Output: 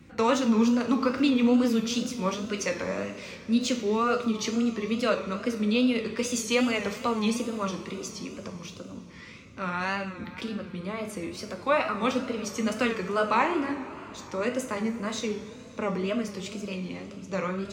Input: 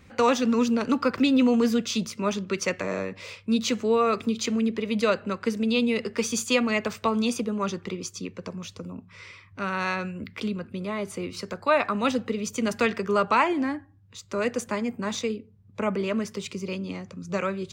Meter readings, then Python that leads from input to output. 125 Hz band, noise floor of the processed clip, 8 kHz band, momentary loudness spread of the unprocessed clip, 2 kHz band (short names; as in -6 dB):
-1.5 dB, -45 dBFS, -2.0 dB, 14 LU, -2.0 dB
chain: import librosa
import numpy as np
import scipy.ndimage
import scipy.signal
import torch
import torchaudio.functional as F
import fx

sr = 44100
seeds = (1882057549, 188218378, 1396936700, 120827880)

y = fx.rev_double_slope(x, sr, seeds[0], early_s=0.5, late_s=4.6, knee_db=-16, drr_db=3.5)
y = fx.wow_flutter(y, sr, seeds[1], rate_hz=2.1, depth_cents=110.0)
y = fx.dmg_noise_band(y, sr, seeds[2], low_hz=58.0, high_hz=290.0, level_db=-49.0)
y = F.gain(torch.from_numpy(y), -3.5).numpy()